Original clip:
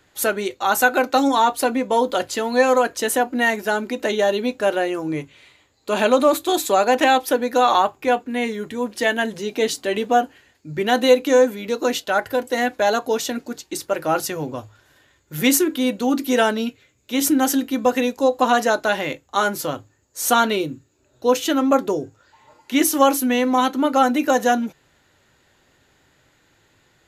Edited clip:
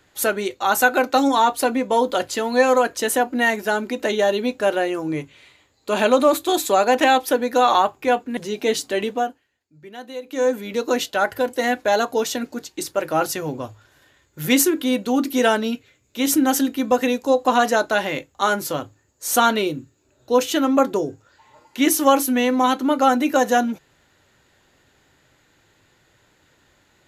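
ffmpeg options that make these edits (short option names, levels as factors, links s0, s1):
-filter_complex "[0:a]asplit=4[s0][s1][s2][s3];[s0]atrim=end=8.372[s4];[s1]atrim=start=9.308:end=10.36,asetpts=PTS-STARTPTS,afade=t=out:st=0.612:d=0.44:silence=0.11885[s5];[s2]atrim=start=10.36:end=11.17,asetpts=PTS-STARTPTS,volume=0.119[s6];[s3]atrim=start=11.17,asetpts=PTS-STARTPTS,afade=t=in:d=0.44:silence=0.11885[s7];[s5][s6][s7]concat=n=3:v=0:a=1[s8];[s4][s8]acrossfade=d=0.004:c1=hsin:c2=hsin"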